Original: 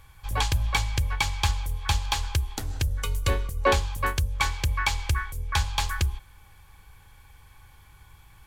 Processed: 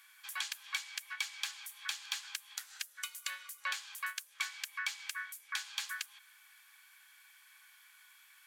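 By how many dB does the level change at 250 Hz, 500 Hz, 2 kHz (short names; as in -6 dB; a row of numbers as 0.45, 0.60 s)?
under -40 dB, under -35 dB, -8.5 dB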